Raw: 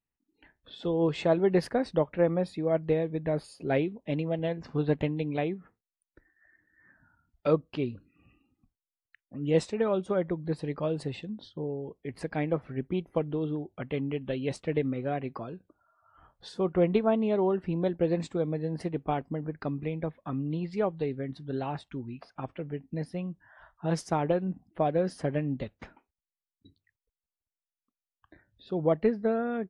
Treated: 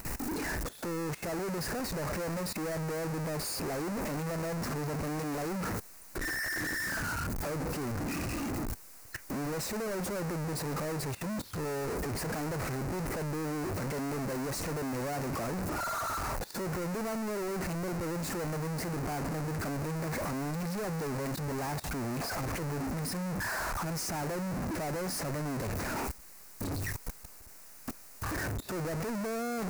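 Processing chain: one-bit comparator; peaking EQ 3.3 kHz -14 dB 0.57 oct; level held to a coarse grid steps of 17 dB; peak limiter -30 dBFS, peak gain reduction 3 dB

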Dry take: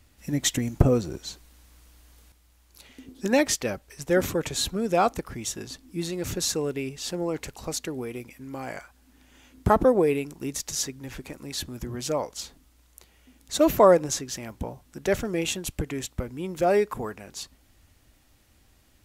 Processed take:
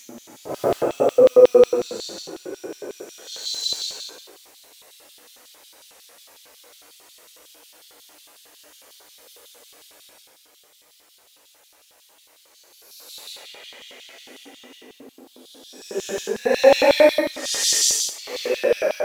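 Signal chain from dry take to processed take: companding laws mixed up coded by mu; Paulstretch 6.3×, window 0.10 s, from 0.70 s; LFO high-pass square 5.5 Hz 500–3500 Hz; trim +3 dB

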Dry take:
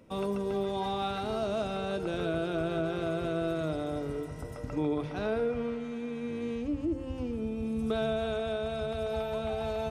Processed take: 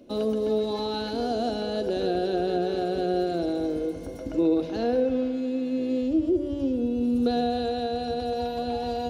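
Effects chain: graphic EQ 125/250/500/1000/2000/4000/8000 Hz -10/+10/+4/-8/-4/+6/-3 dB; on a send at -16.5 dB: reverberation RT60 1.4 s, pre-delay 76 ms; on the sum: speed mistake 44.1 kHz file played as 48 kHz; trim +2 dB

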